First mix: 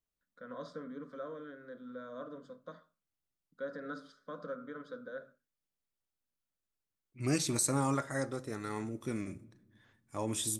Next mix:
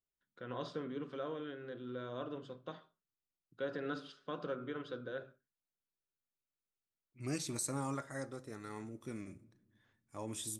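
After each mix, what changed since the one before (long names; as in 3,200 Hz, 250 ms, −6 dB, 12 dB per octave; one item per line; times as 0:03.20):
first voice: remove phaser with its sweep stopped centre 550 Hz, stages 8
second voice −7.5 dB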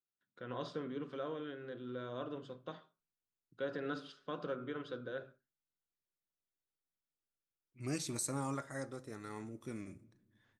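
second voice: entry +0.60 s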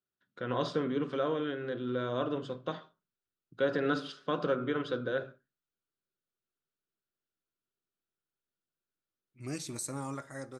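first voice +10.0 dB
second voice: entry +1.60 s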